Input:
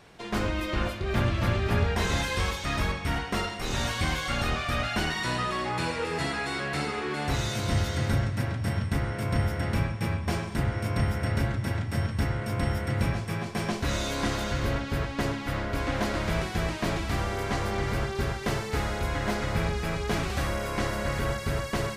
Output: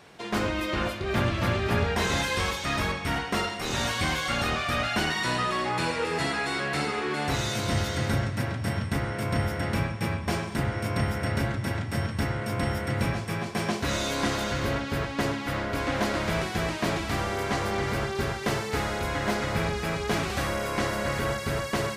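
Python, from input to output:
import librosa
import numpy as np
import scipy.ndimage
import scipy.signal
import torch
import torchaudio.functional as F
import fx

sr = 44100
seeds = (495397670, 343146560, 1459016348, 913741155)

y = fx.highpass(x, sr, hz=130.0, slope=6)
y = y * 10.0 ** (2.5 / 20.0)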